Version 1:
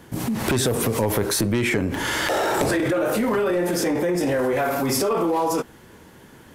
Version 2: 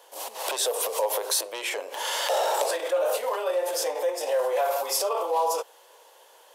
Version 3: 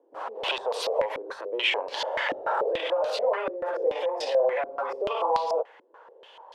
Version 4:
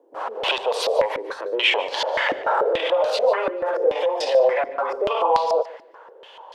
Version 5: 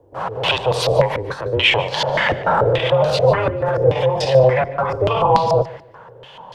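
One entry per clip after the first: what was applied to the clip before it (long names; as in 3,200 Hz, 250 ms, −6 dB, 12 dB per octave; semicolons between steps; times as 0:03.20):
elliptic high-pass filter 510 Hz, stop band 70 dB; flat-topped bell 1,700 Hz −9 dB 1.1 octaves
soft clipping −12.5 dBFS, distortion −29 dB; downward compressor, threshold −26 dBFS, peak gain reduction 5.5 dB; low-pass on a step sequencer 6.9 Hz 300–4,400 Hz
feedback echo with a high-pass in the loop 147 ms, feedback 27%, level −17 dB; level +6 dB
sub-octave generator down 2 octaves, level +4 dB; level +4 dB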